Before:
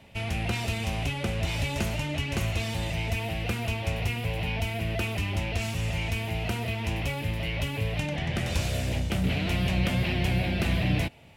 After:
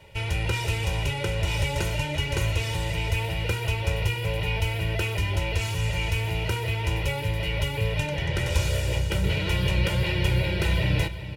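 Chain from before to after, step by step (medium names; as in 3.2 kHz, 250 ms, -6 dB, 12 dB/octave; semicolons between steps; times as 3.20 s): comb 2.1 ms, depth 95%; on a send: delay 382 ms -12.5 dB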